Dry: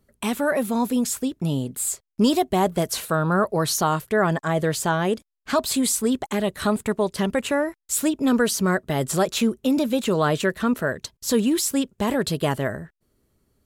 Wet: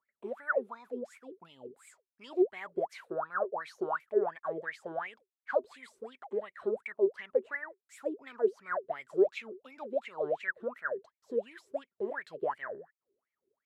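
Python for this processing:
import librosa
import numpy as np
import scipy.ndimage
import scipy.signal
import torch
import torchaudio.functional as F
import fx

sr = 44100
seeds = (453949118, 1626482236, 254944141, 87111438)

y = fx.wah_lfo(x, sr, hz=2.8, low_hz=370.0, high_hz=2300.0, q=20.0)
y = y * 10.0 ** (4.5 / 20.0)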